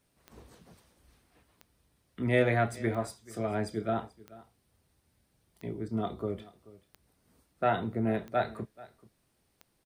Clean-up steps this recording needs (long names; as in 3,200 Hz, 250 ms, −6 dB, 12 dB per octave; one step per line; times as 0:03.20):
click removal
echo removal 434 ms −20.5 dB